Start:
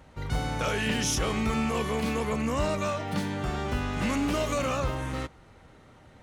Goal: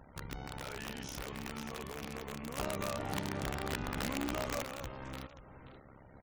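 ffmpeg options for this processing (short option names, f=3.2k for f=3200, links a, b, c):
-filter_complex "[0:a]lowpass=f=3.4k:p=1,tremolo=f=67:d=0.889,acompressor=threshold=-45dB:ratio=3,aeval=exprs='(mod(53.1*val(0)+1,2)-1)/53.1':c=same,aecho=1:1:530:0.251,asettb=1/sr,asplit=3[a][b][c];[a]atrim=end=2.574[d];[b]atrim=start=2.57:end=4.63,asetpts=PTS-STARTPTS,afade=t=in:d=0.004:c=qsin,afade=t=out:st=2.056:d=0.004:c=qsin,acontrast=53[e];[c]atrim=start=4.626[f];[d][e]acrossfade=d=0.004:c1=hsin:c2=qsin[g];[g][f]acrossfade=d=0.004:c1=qsin:c2=hsin,afftfilt=real='re*gte(hypot(re,im),0.000891)':imag='im*gte(hypot(re,im),0.000891)':win_size=1024:overlap=0.75,volume=1.5dB"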